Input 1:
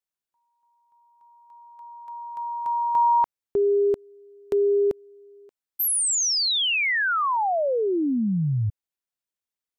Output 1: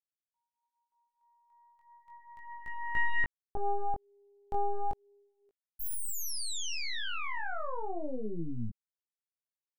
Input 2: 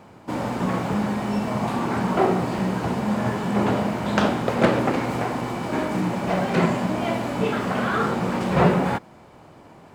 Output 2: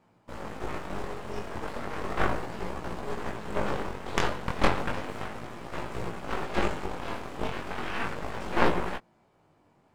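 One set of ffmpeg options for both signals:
ffmpeg -i in.wav -af "aeval=exprs='0.668*(cos(1*acos(clip(val(0)/0.668,-1,1)))-cos(1*PI/2))+0.266*(cos(3*acos(clip(val(0)/0.668,-1,1)))-cos(3*PI/2))+0.211*(cos(4*acos(clip(val(0)/0.668,-1,1)))-cos(4*PI/2))':channel_layout=same,flanger=delay=17:depth=5.4:speed=0.34" out.wav

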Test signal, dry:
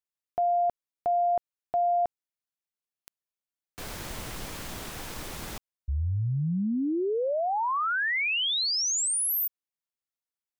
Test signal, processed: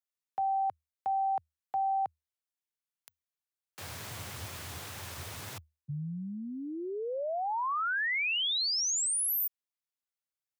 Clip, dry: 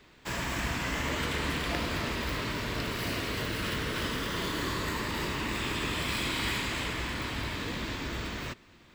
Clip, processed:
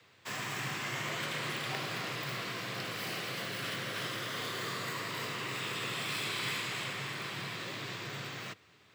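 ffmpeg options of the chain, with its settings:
ffmpeg -i in.wav -af "equalizer=frequency=160:width_type=o:width=2.8:gain=-8.5,afreqshift=77,volume=-3dB" out.wav

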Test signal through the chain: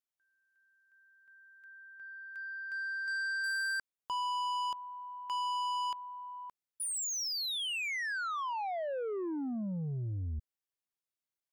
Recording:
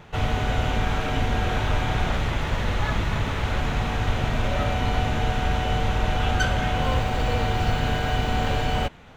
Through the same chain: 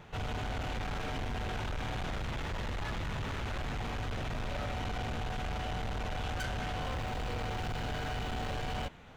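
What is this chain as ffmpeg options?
ffmpeg -i in.wav -af "asoftclip=type=tanh:threshold=-27.5dB,volume=-5.5dB" out.wav

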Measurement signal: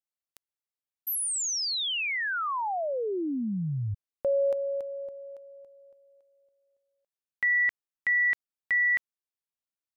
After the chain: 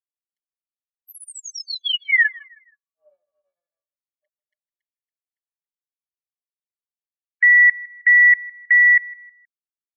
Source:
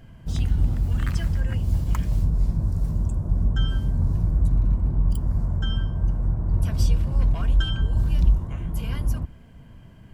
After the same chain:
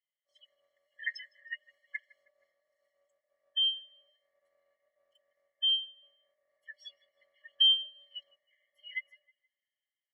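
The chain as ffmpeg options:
ffmpeg -i in.wav -filter_complex "[0:a]afftfilt=real='re*(1-between(b*sr/4096,470,1300))':imag='im*(1-between(b*sr/4096,470,1300))':win_size=4096:overlap=0.75,aemphasis=mode=reproduction:type=50kf,afftdn=noise_reduction=32:noise_floor=-35,aecho=1:1:4.8:1,adynamicequalizer=threshold=0.00891:dfrequency=270:dqfactor=0.88:tfrequency=270:tqfactor=0.88:attack=5:release=100:ratio=0.4:range=3:mode=boostabove:tftype=bell,acrossover=split=170|480|2600[link_01][link_02][link_03][link_04];[link_03]dynaudnorm=framelen=250:gausssize=9:maxgain=14.5dB[link_05];[link_01][link_02][link_05][link_04]amix=inputs=4:normalize=0,asplit=2[link_06][link_07];[link_07]adelay=158,lowpass=frequency=3200:poles=1,volume=-22dB,asplit=2[link_08][link_09];[link_09]adelay=158,lowpass=frequency=3200:poles=1,volume=0.41,asplit=2[link_10][link_11];[link_11]adelay=158,lowpass=frequency=3200:poles=1,volume=0.41[link_12];[link_06][link_08][link_10][link_12]amix=inputs=4:normalize=0,afftfilt=real='re*eq(mod(floor(b*sr/1024/570),2),1)':imag='im*eq(mod(floor(b*sr/1024/570),2),1)':win_size=1024:overlap=0.75,volume=1.5dB" out.wav

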